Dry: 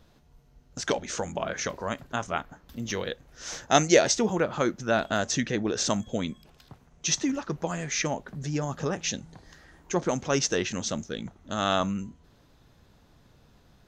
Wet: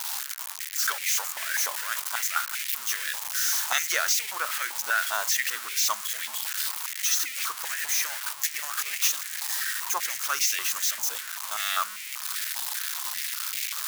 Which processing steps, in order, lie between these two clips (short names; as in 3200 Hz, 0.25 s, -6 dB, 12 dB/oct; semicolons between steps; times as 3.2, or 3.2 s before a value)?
switching spikes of -14.5 dBFS; 8.25–9.08 transient shaper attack +8 dB, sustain -5 dB; stepped high-pass 5.1 Hz 890–2200 Hz; gain -5 dB